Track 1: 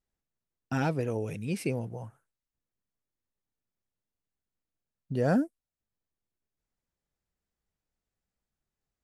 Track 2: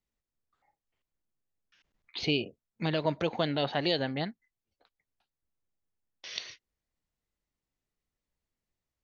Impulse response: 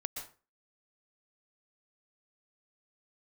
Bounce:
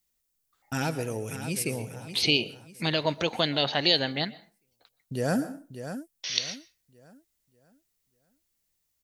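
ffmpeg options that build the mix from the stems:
-filter_complex "[0:a]agate=range=-33dB:threshold=-35dB:ratio=3:detection=peak,volume=-5dB,asplit=3[link_01][link_02][link_03];[link_02]volume=-5.5dB[link_04];[link_03]volume=-7dB[link_05];[1:a]volume=-0.5dB,asplit=2[link_06][link_07];[link_07]volume=-13.5dB[link_08];[2:a]atrim=start_sample=2205[link_09];[link_04][link_08]amix=inputs=2:normalize=0[link_10];[link_10][link_09]afir=irnorm=-1:irlink=0[link_11];[link_05]aecho=0:1:591|1182|1773|2364|2955:1|0.35|0.122|0.0429|0.015[link_12];[link_01][link_06][link_11][link_12]amix=inputs=4:normalize=0,crystalizer=i=4.5:c=0"

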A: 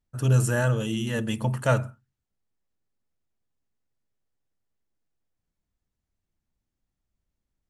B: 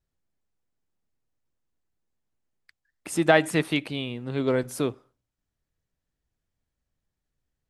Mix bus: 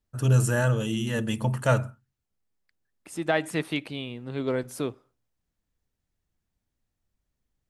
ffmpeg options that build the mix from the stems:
ffmpeg -i stem1.wav -i stem2.wav -filter_complex "[0:a]volume=0dB,asplit=2[link_01][link_02];[1:a]volume=-3.5dB[link_03];[link_02]apad=whole_len=339425[link_04];[link_03][link_04]sidechaincompress=threshold=-39dB:ratio=8:attack=36:release=1270[link_05];[link_01][link_05]amix=inputs=2:normalize=0" out.wav

